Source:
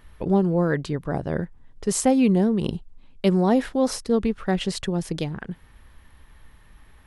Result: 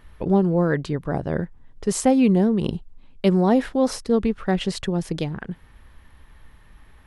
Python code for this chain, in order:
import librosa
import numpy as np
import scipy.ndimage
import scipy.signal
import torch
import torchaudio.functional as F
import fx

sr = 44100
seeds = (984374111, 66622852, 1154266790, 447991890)

y = fx.high_shelf(x, sr, hz=4900.0, db=-4.5)
y = y * 10.0 ** (1.5 / 20.0)